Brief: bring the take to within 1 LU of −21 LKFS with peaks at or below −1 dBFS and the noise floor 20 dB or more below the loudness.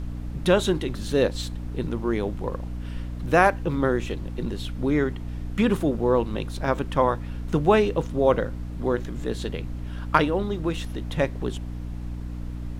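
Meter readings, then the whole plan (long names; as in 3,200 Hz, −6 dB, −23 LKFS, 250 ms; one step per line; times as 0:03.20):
mains hum 60 Hz; hum harmonics up to 300 Hz; level of the hum −30 dBFS; background noise floor −33 dBFS; target noise floor −46 dBFS; integrated loudness −25.5 LKFS; sample peak −3.0 dBFS; target loudness −21.0 LKFS
→ hum removal 60 Hz, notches 5
noise reduction from a noise print 13 dB
level +4.5 dB
brickwall limiter −1 dBFS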